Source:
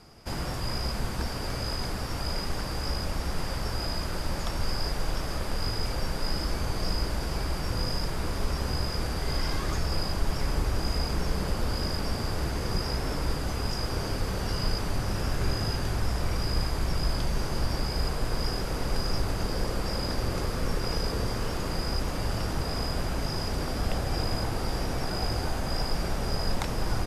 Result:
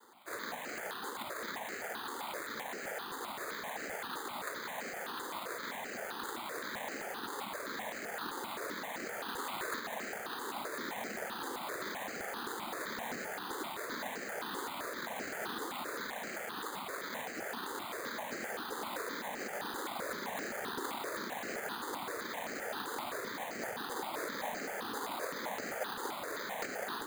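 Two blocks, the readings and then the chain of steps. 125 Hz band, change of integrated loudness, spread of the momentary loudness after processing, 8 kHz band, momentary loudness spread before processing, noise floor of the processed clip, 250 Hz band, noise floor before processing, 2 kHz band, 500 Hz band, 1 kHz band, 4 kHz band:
-29.5 dB, -8.5 dB, 2 LU, -5.5 dB, 3 LU, -43 dBFS, -11.5 dB, -33 dBFS, -1.0 dB, -7.0 dB, -3.5 dB, -11.0 dB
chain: elliptic high-pass 260 Hz; tilt +4 dB/oct; noise vocoder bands 6; air absorption 320 m; careless resampling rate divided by 8×, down filtered, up hold; step phaser 7.7 Hz 650–3500 Hz; gain +3.5 dB

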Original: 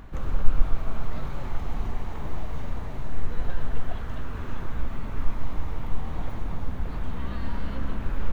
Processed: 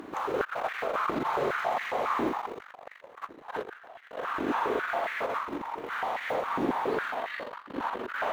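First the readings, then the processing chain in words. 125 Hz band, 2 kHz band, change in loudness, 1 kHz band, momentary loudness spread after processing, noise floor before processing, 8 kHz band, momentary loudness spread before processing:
-17.5 dB, +10.5 dB, +3.5 dB, +11.0 dB, 15 LU, -32 dBFS, n/a, 4 LU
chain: spring tank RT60 3.7 s, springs 42/58 ms, chirp 20 ms, DRR -1 dB; added harmonics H 2 -12 dB, 3 -29 dB, 5 -17 dB, 6 -25 dB, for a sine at -0.5 dBFS; stepped high-pass 7.3 Hz 320–1900 Hz

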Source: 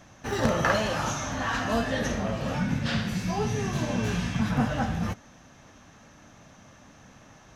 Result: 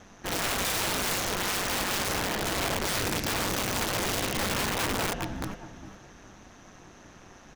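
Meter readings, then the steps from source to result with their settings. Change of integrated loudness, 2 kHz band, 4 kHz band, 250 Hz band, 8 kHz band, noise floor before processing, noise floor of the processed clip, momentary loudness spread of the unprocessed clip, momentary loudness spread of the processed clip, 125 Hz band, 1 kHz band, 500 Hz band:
0.0 dB, +1.0 dB, +6.5 dB, -6.5 dB, +8.0 dB, -53 dBFS, -52 dBFS, 5 LU, 9 LU, -7.5 dB, -0.5 dB, -2.5 dB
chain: ring modulator 97 Hz; feedback echo 0.411 s, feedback 26%, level -7 dB; wrapped overs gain 26.5 dB; gain +3.5 dB

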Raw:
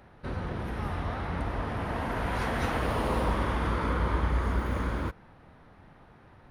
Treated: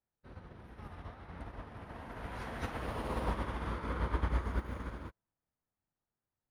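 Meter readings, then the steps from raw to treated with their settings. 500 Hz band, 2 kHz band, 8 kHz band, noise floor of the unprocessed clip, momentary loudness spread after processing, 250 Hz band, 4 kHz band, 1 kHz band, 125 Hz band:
-10.0 dB, -10.5 dB, -10.0 dB, -56 dBFS, 17 LU, -10.0 dB, -10.0 dB, -10.0 dB, -9.0 dB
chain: resonator 110 Hz, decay 1.7 s, mix 40%; upward expander 2.5:1, over -52 dBFS; gain +1.5 dB

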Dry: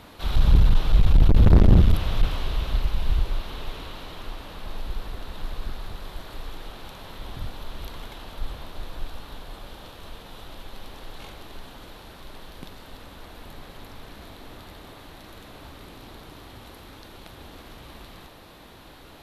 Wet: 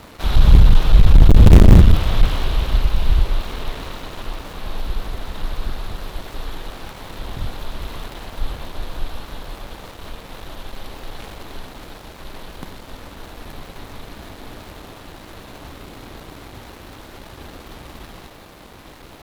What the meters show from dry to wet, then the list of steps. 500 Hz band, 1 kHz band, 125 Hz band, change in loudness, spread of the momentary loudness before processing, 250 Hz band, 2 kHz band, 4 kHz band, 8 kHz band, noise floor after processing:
+7.0 dB, +7.0 dB, +7.0 dB, +7.0 dB, 24 LU, +7.0 dB, +7.0 dB, +6.0 dB, n/a, -42 dBFS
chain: switching dead time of 0.26 ms; gain +7 dB

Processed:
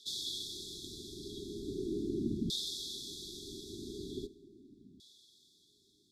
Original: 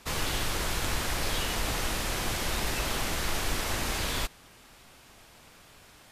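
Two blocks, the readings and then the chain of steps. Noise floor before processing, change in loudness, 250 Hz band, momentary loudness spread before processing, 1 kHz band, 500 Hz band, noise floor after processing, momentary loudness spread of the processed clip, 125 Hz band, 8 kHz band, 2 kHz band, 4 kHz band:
-55 dBFS, -9.5 dB, -1.0 dB, 1 LU, under -40 dB, -6.0 dB, -69 dBFS, 23 LU, -11.5 dB, -13.5 dB, under -40 dB, -7.0 dB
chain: Schroeder reverb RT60 0.94 s, combs from 31 ms, DRR 17 dB; LFO band-pass saw down 0.4 Hz 210–3000 Hz; FFT band-reject 430–3300 Hz; gain +9 dB

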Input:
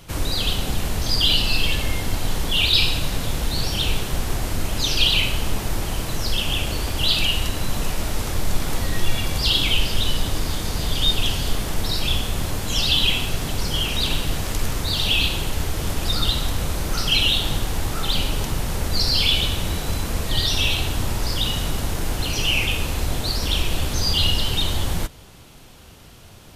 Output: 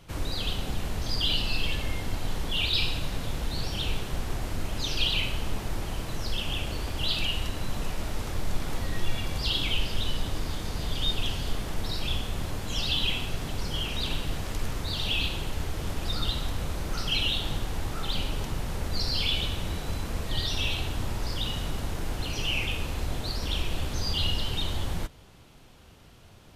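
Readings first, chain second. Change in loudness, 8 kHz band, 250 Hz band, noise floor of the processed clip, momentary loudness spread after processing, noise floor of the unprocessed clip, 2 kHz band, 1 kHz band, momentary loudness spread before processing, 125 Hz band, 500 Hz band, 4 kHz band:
-8.5 dB, -12.0 dB, -7.0 dB, -51 dBFS, 8 LU, -43 dBFS, -8.0 dB, -7.0 dB, 9 LU, -7.0 dB, -7.0 dB, -9.0 dB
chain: high shelf 5600 Hz -7.5 dB; gain -7 dB

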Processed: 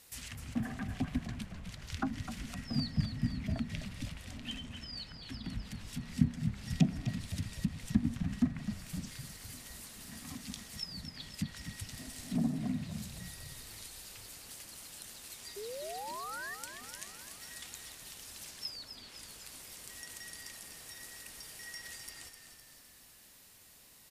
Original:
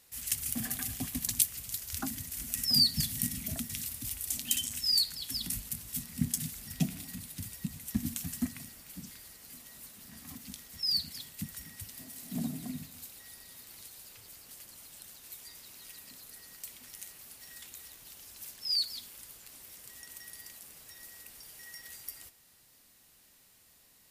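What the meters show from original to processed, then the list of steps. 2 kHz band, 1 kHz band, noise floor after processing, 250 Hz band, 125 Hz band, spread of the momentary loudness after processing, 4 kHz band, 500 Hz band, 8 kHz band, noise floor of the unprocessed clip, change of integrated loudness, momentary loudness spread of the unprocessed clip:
+2.5 dB, +7.5 dB, -59 dBFS, +4.0 dB, +4.5 dB, 13 LU, -11.5 dB, +8.5 dB, -9.5 dB, -63 dBFS, -7.0 dB, 19 LU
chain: treble ducked by the level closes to 1400 Hz, closed at -32 dBFS; painted sound rise, 15.56–16.55, 390–1900 Hz -46 dBFS; frequency-shifting echo 0.255 s, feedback 58%, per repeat -37 Hz, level -9 dB; gain +3.5 dB

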